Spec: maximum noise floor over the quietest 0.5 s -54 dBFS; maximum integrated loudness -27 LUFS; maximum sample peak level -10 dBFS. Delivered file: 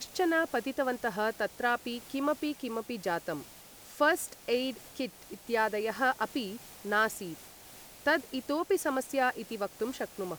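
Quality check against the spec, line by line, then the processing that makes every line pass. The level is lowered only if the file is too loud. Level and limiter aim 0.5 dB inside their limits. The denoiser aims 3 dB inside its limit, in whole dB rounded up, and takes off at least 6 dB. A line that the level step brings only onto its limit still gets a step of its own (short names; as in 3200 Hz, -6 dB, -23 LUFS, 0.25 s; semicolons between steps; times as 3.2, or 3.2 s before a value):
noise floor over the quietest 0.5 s -52 dBFS: fail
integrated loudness -32.0 LUFS: OK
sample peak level -14.0 dBFS: OK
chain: denoiser 6 dB, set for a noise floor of -52 dBFS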